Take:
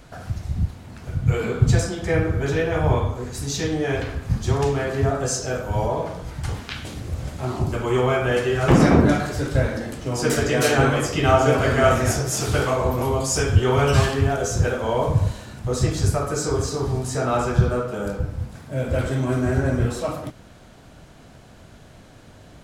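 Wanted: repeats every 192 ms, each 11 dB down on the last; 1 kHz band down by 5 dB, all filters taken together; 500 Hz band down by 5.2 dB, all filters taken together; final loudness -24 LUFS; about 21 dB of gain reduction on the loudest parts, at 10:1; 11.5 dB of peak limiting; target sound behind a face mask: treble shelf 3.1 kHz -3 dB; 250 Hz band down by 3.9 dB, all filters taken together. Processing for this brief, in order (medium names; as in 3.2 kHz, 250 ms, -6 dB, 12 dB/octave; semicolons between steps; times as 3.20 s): peaking EQ 250 Hz -4 dB; peaking EQ 500 Hz -4 dB; peaking EQ 1 kHz -5 dB; compression 10:1, threshold -33 dBFS; peak limiter -29 dBFS; treble shelf 3.1 kHz -3 dB; feedback delay 192 ms, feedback 28%, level -11 dB; trim +15 dB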